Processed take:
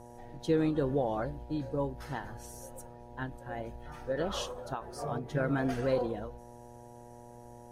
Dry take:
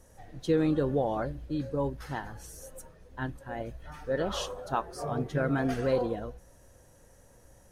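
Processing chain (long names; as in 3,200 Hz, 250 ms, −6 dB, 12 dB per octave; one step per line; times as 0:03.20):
hum with harmonics 120 Hz, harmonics 8, −49 dBFS −1 dB per octave
every ending faded ahead of time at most 120 dB per second
level −2 dB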